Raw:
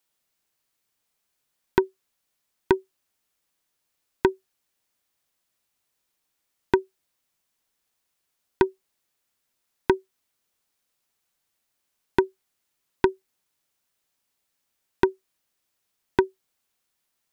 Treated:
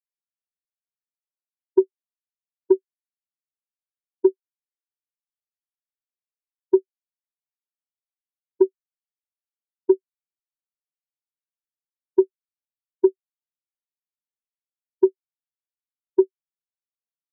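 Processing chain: spectral expander 2.5:1; gain -1.5 dB

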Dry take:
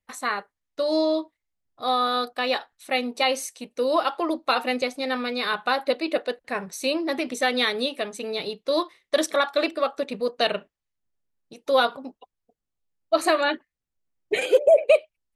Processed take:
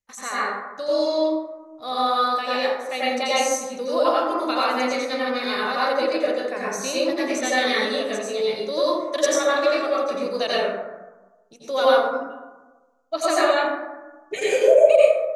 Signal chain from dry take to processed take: bell 6400 Hz +12 dB 0.52 oct; plate-style reverb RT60 1.2 s, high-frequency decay 0.35×, pre-delay 75 ms, DRR -8 dB; gain -6.5 dB

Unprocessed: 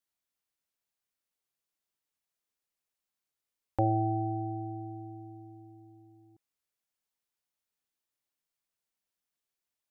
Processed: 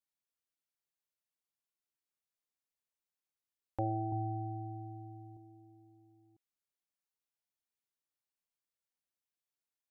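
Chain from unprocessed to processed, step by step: 4.12–5.37 comb 1 ms, depth 88%; gain -7.5 dB

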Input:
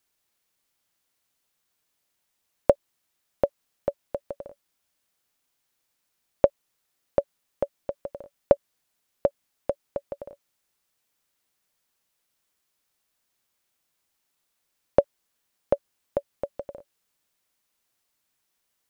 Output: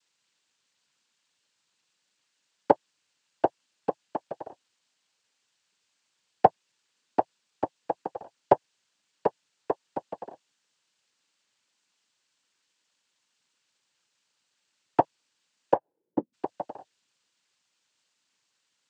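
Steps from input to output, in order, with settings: 15.74–16.32 synth low-pass 670 Hz -> 230 Hz, resonance Q 10; noise vocoder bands 8

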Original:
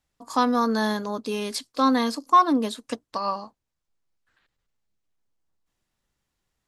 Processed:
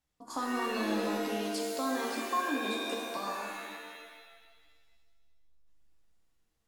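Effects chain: 1.08–3.17 HPF 170 Hz; compressor 2:1, threshold -33 dBFS, peak gain reduction 11.5 dB; shimmer reverb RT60 1.5 s, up +7 st, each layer -2 dB, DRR 0 dB; gain -7 dB

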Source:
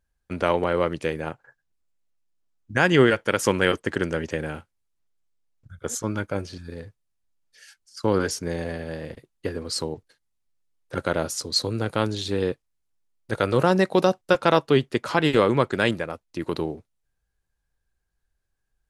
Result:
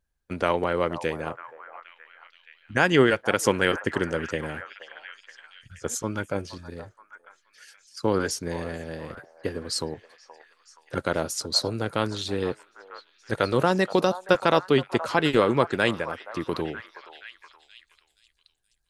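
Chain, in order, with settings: delay with a stepping band-pass 0.474 s, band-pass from 860 Hz, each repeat 0.7 oct, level -9.5 dB; harmonic-percussive split harmonic -4 dB

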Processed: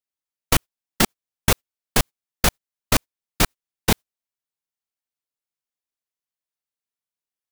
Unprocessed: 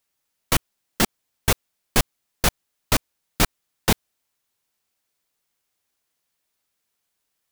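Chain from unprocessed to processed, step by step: gate -26 dBFS, range -23 dB; in parallel at -1 dB: negative-ratio compressor -20 dBFS, ratio -0.5; on the sum: gain -2 dB

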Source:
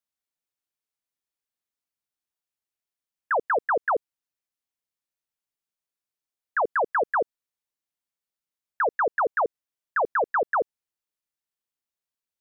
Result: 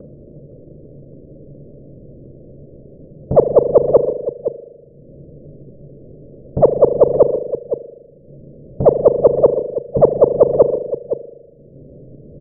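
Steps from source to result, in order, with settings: half-waves squared off; steep low-pass 590 Hz 96 dB/oct; bell 140 Hz +14 dB 0.21 oct; upward compressor, threshold -27 dBFS; echo 0.512 s -14.5 dB; spring tank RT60 1.2 s, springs 40 ms, chirp 50 ms, DRR 10.5 dB; maximiser +20 dB; Doppler distortion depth 0.25 ms

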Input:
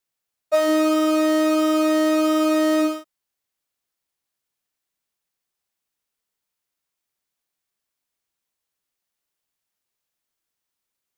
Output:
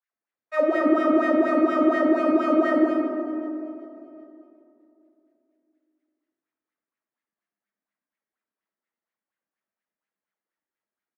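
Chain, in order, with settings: wah 4.2 Hz 200–2000 Hz, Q 4.7; on a send: feedback echo 0.384 s, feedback 46%, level -19.5 dB; on the sum: digital reverb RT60 3 s, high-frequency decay 0.3×, pre-delay 0 ms, DRR 0 dB; gain +4.5 dB

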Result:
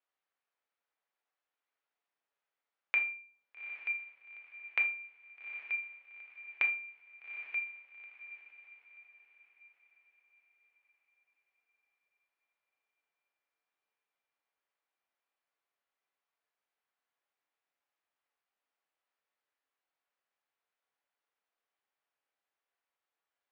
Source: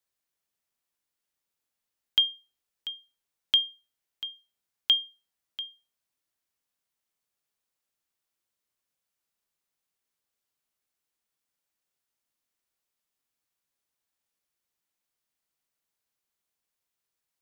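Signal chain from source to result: compressor, threshold -28 dBFS, peak gain reduction 10 dB; BPF 710–3000 Hz; on a send: diffused feedback echo 0.608 s, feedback 44%, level -12 dB; on the sum: shoebox room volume 210 m³, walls furnished, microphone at 1.1 m; speed mistake 45 rpm record played at 33 rpm

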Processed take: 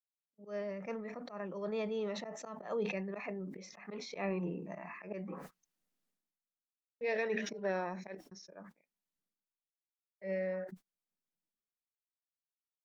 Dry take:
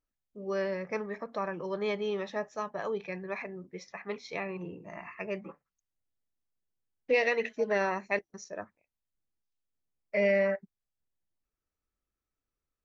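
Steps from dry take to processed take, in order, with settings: Doppler pass-by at 4.29, 19 m/s, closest 26 m; dynamic EQ 610 Hz, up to +5 dB, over -49 dBFS, Q 1.1; auto swell 0.11 s; resonant low shelf 140 Hz -9.5 dB, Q 3; gate -58 dBFS, range -28 dB; sustainer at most 50 dB/s; gain -3 dB

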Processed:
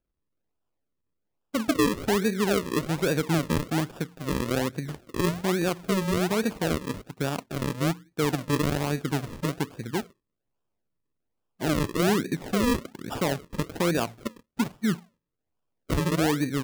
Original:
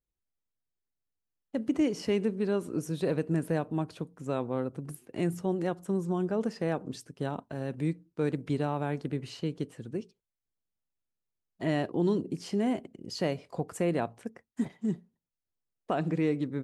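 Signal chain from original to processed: in parallel at +1 dB: limiter -25 dBFS, peak gain reduction 8.5 dB; on the sum: decimation with a swept rate 41×, swing 100% 1.2 Hz

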